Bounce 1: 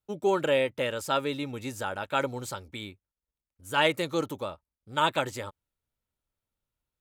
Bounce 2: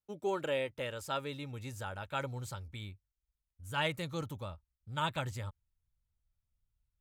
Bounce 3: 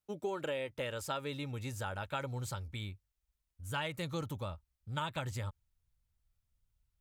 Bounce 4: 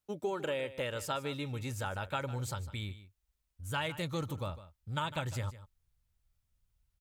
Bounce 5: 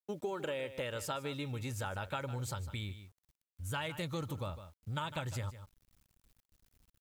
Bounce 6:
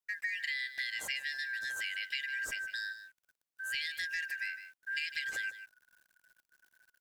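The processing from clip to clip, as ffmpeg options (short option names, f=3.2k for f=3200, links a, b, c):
-af "asubboost=boost=10.5:cutoff=110,volume=-8.5dB"
-af "acompressor=threshold=-36dB:ratio=10,volume=3dB"
-af "aecho=1:1:153:0.178,volume=2dB"
-af "acompressor=threshold=-42dB:ratio=2,acrusher=bits=11:mix=0:aa=0.000001,volume=3dB"
-af "afftfilt=real='real(if(lt(b,272),68*(eq(floor(b/68),0)*3+eq(floor(b/68),1)*0+eq(floor(b/68),2)*1+eq(floor(b/68),3)*2)+mod(b,68),b),0)':imag='imag(if(lt(b,272),68*(eq(floor(b/68),0)*3+eq(floor(b/68),1)*0+eq(floor(b/68),2)*1+eq(floor(b/68),3)*2)+mod(b,68),b),0)':win_size=2048:overlap=0.75,volume=1dB"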